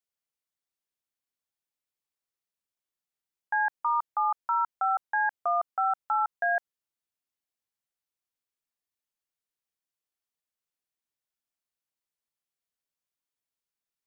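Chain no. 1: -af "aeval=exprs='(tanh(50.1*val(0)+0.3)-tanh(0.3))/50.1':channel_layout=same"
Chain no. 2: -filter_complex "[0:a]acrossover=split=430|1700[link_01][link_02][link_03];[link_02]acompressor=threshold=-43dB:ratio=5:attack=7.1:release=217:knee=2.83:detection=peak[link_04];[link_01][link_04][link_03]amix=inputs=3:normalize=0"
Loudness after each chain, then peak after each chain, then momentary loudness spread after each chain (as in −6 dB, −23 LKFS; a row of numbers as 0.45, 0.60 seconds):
−38.0, −36.5 LKFS; −32.0, −23.5 dBFS; 2, 4 LU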